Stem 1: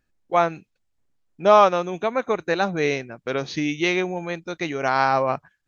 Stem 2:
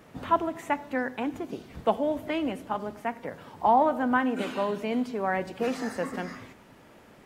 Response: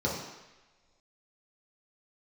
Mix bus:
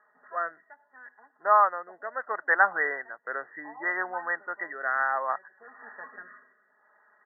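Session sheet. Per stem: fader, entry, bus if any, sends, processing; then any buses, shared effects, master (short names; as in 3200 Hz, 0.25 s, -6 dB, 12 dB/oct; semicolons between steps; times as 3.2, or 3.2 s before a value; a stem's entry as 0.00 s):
+1.5 dB, 0.00 s, no send, low shelf 420 Hz -5.5 dB; AGC gain up to 12 dB
-1.0 dB, 0.00 s, no send, comb 4.8 ms, depth 84%; auto duck -13 dB, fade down 0.75 s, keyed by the first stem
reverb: off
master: Chebyshev high-pass 1300 Hz, order 2; rotary speaker horn 0.65 Hz; brick-wall FIR low-pass 2000 Hz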